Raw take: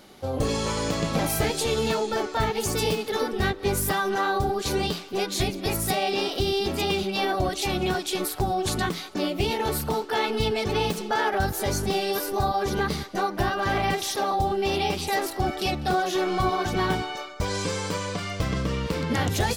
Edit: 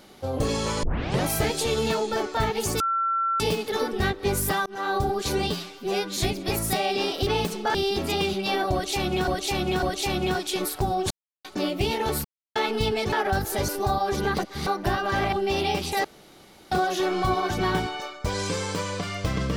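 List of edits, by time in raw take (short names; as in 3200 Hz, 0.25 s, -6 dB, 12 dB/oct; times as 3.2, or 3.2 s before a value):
0.83 tape start 0.41 s
2.8 add tone 1350 Hz -21.5 dBFS 0.60 s
4.06–4.34 fade in
4.9–5.35 stretch 1.5×
7.42–7.97 loop, 3 plays
8.7–9.04 mute
9.84–10.15 mute
10.72–11.2 move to 6.44
11.76–12.22 cut
12.92–13.2 reverse
13.86–14.48 cut
15.2–15.87 room tone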